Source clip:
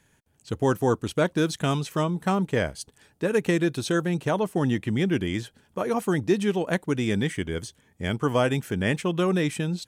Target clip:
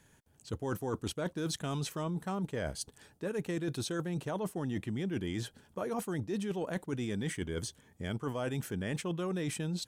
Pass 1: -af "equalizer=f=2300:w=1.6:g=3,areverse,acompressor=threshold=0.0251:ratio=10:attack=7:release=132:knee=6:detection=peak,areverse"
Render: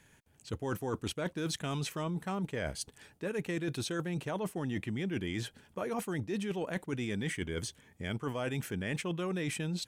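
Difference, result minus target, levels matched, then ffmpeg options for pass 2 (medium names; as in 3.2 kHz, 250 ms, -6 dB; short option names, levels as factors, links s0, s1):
2 kHz band +3.5 dB
-af "equalizer=f=2300:w=1.6:g=-3.5,areverse,acompressor=threshold=0.0251:ratio=10:attack=7:release=132:knee=6:detection=peak,areverse"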